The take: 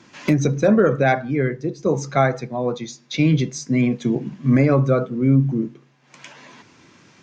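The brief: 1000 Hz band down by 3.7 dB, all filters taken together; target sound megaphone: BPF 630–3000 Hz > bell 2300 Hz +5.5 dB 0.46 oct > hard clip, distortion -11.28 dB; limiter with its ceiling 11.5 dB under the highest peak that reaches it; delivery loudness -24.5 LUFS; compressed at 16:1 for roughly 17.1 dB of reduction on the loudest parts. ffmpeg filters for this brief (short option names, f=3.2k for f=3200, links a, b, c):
-af "equalizer=f=1k:t=o:g=-4,acompressor=threshold=-29dB:ratio=16,alimiter=level_in=2.5dB:limit=-24dB:level=0:latency=1,volume=-2.5dB,highpass=630,lowpass=3k,equalizer=f=2.3k:t=o:w=0.46:g=5.5,asoftclip=type=hard:threshold=-38.5dB,volume=21.5dB"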